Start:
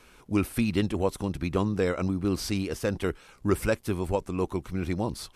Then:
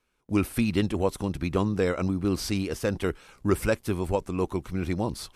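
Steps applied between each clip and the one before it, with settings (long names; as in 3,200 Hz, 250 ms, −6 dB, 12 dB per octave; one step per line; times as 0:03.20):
noise gate with hold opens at −43 dBFS
level +1 dB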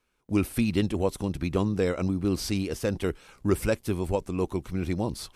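dynamic equaliser 1,300 Hz, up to −4 dB, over −43 dBFS, Q 0.97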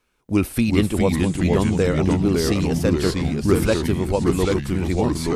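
delay with pitch and tempo change per echo 337 ms, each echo −2 semitones, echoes 3
level +5.5 dB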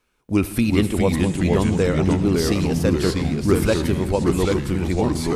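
convolution reverb RT60 1.9 s, pre-delay 62 ms, DRR 14 dB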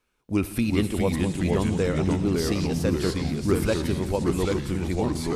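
echo through a band-pass that steps 175 ms, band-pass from 4,500 Hz, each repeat 0.7 octaves, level −7.5 dB
level −5 dB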